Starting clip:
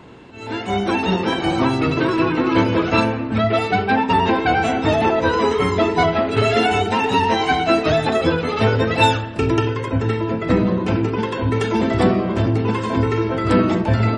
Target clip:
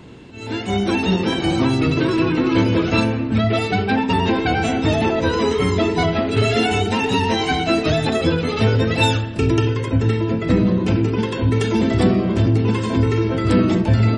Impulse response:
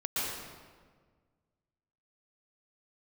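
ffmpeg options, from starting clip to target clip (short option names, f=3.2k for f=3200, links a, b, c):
-filter_complex "[0:a]equalizer=f=1k:t=o:w=2.5:g=-9,asplit=2[a][b];[b]alimiter=limit=-15dB:level=0:latency=1,volume=-3dB[c];[a][c]amix=inputs=2:normalize=0"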